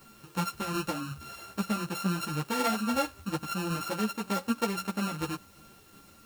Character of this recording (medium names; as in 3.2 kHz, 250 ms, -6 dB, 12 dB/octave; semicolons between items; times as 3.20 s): a buzz of ramps at a fixed pitch in blocks of 32 samples; tremolo saw down 2.7 Hz, depth 35%; a quantiser's noise floor 10-bit, dither triangular; a shimmering, thickened sound